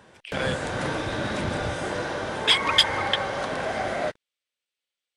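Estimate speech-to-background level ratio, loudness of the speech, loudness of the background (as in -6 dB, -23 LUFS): 5.0 dB, -23.5 LUFS, -28.5 LUFS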